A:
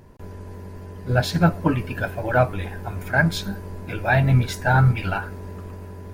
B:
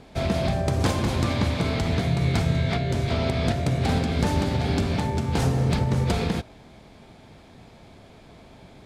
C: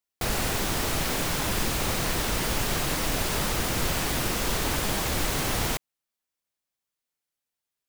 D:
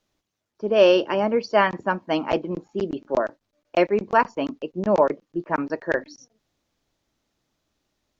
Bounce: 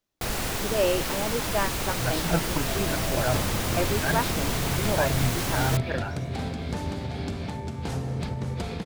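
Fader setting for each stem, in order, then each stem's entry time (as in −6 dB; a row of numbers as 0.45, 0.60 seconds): −10.0, −8.0, −2.0, −9.0 decibels; 0.90, 2.50, 0.00, 0.00 seconds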